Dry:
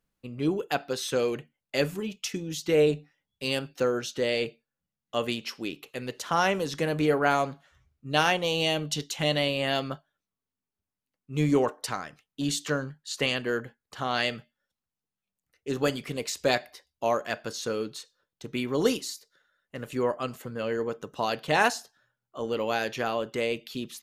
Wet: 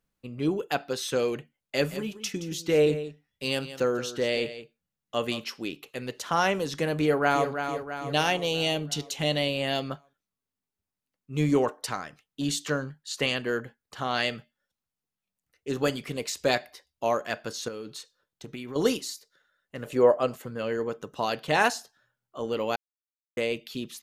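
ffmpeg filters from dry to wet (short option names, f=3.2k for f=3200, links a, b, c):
-filter_complex "[0:a]asplit=3[a][b][c];[a]afade=t=out:st=1.84:d=0.02[d];[b]aecho=1:1:172:0.224,afade=t=in:st=1.84:d=0.02,afade=t=out:st=5.43:d=0.02[e];[c]afade=t=in:st=5.43:d=0.02[f];[d][e][f]amix=inputs=3:normalize=0,asplit=2[g][h];[h]afade=t=in:st=7.02:d=0.01,afade=t=out:st=7.49:d=0.01,aecho=0:1:330|660|990|1320|1650|1980|2310|2640:0.421697|0.253018|0.151811|0.0910864|0.0546519|0.0327911|0.0196747|0.0118048[i];[g][i]amix=inputs=2:normalize=0,asettb=1/sr,asplit=3[j][k][l];[j]atrim=end=8.124[m];[k]atrim=start=8.12:end=9.88,asetpts=PTS-STARTPTS,afade=t=in:d=0.004:c=qsin,afade=t=out:st=1.756:d=0.004:c=qsin,equalizer=f=1.3k:w=1.5:g=-5.5[n];[l]atrim=start=9.876[o];[m][n]acrossfade=d=0.004:c1=hsin:c2=qsin[p];[p][o]acrossfade=d=0.004:c1=qsin:c2=hsin,asettb=1/sr,asplit=3[q][r][s];[q]atrim=end=17.684[t];[r]atrim=start=17.68:end=18.76,asetpts=PTS-STARTPTS,afade=t=in:d=0.004:c=qsin,afade=t=out:st=1.076:d=0.004:c=qsin,acompressor=threshold=-34dB:ratio=6:attack=3.2:release=140:knee=1:detection=peak[u];[s]atrim=start=18.756[v];[t][u]acrossfade=d=0.004:c1=hsin:c2=qsin[w];[w][v]acrossfade=d=0.004:c1=qsin:c2=hsin,asettb=1/sr,asplit=3[x][y][z];[x]atrim=end=19.854[aa];[y]atrim=start=19.85:end=20.35,asetpts=PTS-STARTPTS,afade=t=in:d=0.004:c=qsin,afade=t=out:st=0.496:d=0.004:c=qsin,equalizer=f=570:w=1.2:g=10[ab];[z]atrim=start=20.346[ac];[aa][ab]acrossfade=d=0.004:c1=hsin:c2=qsin[ad];[ad][ac]acrossfade=d=0.004:c1=qsin:c2=hsin,asplit=3[ae][af][ag];[ae]atrim=end=22.76,asetpts=PTS-STARTPTS,afade=t=out:st=22.756:d=0.004:c=hsin[ah];[af]atrim=start=22.76:end=23.37,asetpts=PTS-STARTPTS,volume=0[ai];[ag]atrim=start=23.37,asetpts=PTS-STARTPTS,afade=t=in:d=0.004:c=hsin[aj];[ah][ai][aj]concat=n=3:v=0:a=1"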